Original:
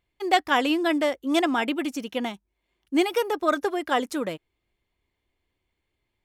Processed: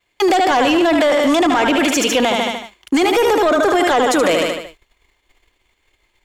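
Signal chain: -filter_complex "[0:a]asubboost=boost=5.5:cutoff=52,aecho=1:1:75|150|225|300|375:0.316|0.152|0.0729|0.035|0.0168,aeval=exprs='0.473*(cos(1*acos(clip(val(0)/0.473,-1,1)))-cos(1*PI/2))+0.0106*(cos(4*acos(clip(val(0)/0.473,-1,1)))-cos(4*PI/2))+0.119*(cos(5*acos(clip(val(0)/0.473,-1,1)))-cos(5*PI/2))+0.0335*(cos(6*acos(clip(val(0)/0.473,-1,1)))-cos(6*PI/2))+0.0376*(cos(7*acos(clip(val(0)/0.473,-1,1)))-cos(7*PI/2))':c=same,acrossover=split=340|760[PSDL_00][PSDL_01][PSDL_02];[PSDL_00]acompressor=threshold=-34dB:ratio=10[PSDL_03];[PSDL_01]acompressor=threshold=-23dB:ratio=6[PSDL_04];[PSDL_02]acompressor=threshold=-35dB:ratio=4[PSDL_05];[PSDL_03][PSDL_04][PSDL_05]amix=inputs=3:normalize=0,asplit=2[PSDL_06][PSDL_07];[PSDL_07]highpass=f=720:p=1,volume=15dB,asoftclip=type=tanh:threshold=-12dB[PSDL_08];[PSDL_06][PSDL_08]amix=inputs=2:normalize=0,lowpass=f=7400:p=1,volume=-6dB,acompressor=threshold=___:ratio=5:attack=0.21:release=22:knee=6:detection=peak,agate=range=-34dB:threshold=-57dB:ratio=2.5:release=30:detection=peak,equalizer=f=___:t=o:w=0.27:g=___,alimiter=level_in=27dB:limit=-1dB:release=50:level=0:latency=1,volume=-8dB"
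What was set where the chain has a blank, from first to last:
-29dB, 7000, 7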